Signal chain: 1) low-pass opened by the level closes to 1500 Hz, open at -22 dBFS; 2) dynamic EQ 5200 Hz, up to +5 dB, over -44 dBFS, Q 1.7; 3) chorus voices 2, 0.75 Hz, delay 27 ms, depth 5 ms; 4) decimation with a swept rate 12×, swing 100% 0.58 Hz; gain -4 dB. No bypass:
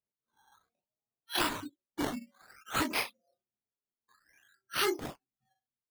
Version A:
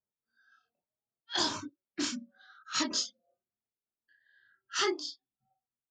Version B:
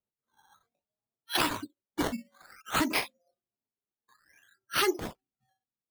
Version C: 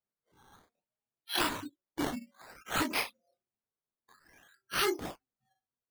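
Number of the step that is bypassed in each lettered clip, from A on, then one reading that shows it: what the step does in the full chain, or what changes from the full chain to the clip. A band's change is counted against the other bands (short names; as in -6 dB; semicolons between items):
4, crest factor change +2.5 dB; 3, loudness change +3.0 LU; 1, momentary loudness spread change +1 LU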